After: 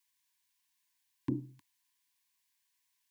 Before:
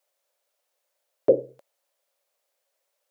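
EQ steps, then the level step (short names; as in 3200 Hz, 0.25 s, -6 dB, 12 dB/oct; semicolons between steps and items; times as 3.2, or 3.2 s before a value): elliptic band-stop 300–1000 Hz, stop band 40 dB; Butterworth band-stop 1300 Hz, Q 2.9; bell 92 Hz +10.5 dB 0.74 oct; 0.0 dB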